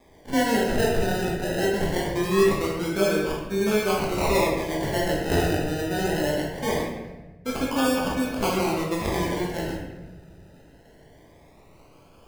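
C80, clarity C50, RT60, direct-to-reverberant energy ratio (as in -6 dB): 4.0 dB, 1.0 dB, 1.1 s, -4.0 dB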